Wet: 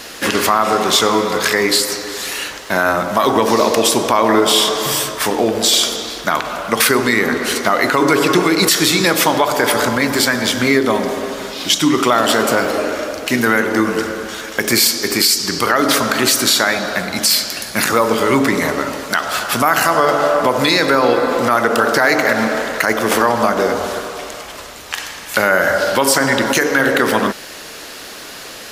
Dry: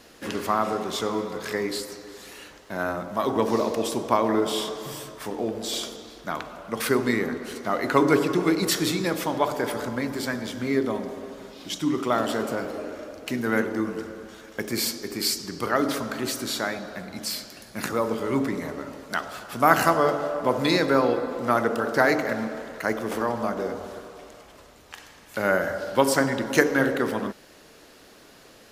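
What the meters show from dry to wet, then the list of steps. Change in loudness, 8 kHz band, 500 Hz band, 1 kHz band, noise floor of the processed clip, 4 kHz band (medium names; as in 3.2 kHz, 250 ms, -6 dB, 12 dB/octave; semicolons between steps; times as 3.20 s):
+11.0 dB, +16.0 dB, +9.0 dB, +10.5 dB, -33 dBFS, +16.0 dB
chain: tilt shelf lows -5 dB, about 740 Hz; compression 2:1, threshold -28 dBFS, peak gain reduction 10 dB; loudness maximiser +17.5 dB; trim -1 dB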